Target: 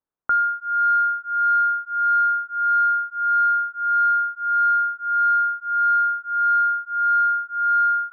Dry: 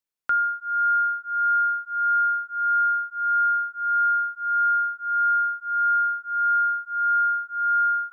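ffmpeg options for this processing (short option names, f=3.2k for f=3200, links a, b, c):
-af "lowpass=f=1.4k:w=0.5412,lowpass=f=1.4k:w=1.3066,acontrast=47"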